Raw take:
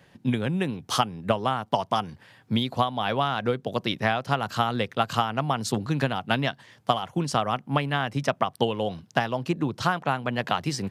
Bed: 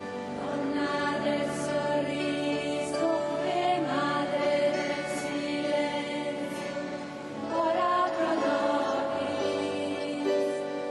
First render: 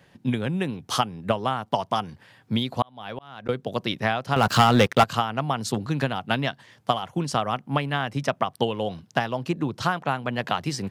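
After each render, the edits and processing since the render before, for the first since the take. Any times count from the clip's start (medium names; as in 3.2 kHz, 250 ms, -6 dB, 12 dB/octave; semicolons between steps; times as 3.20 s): 2.82–3.49 s: slow attack 744 ms; 4.36–5.04 s: waveshaping leveller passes 3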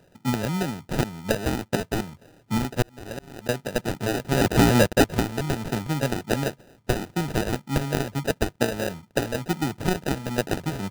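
sample-rate reducer 1.1 kHz, jitter 0%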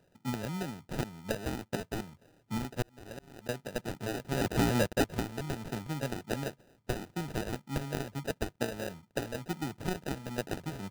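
trim -10 dB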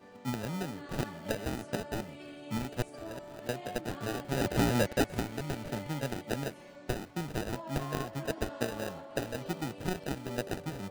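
add bed -17.5 dB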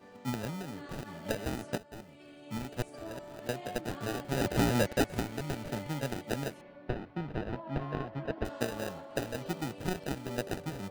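0.50–1.18 s: compression 4:1, threshold -36 dBFS; 1.78–3.06 s: fade in, from -15 dB; 6.61–8.45 s: distance through air 350 m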